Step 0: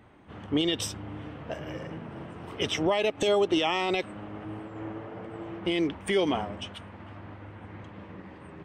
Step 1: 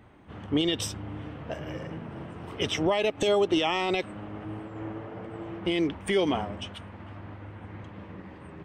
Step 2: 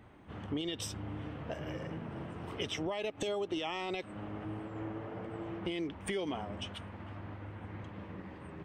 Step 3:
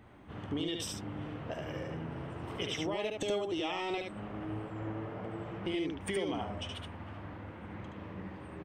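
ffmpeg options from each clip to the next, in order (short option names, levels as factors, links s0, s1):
-af "lowshelf=f=140:g=4"
-af "acompressor=threshold=0.0224:ratio=3,volume=0.75"
-af "aecho=1:1:73:0.668"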